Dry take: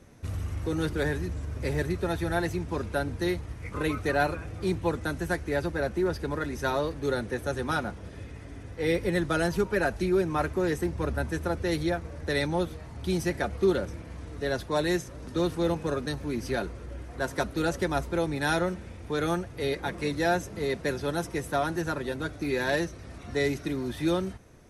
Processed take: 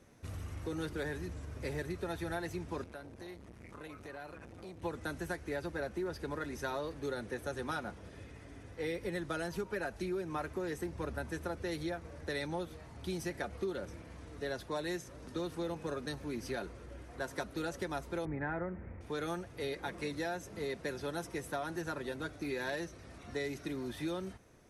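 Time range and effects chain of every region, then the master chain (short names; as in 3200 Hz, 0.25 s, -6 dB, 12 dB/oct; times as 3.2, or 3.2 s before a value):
2.84–4.82 compressor 16:1, threshold -34 dBFS + core saturation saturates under 460 Hz
18.25–19.01 Chebyshev low-pass 2100 Hz, order 4 + low shelf 210 Hz +8.5 dB
whole clip: low shelf 170 Hz -6 dB; compressor, threshold -28 dBFS; gain -5.5 dB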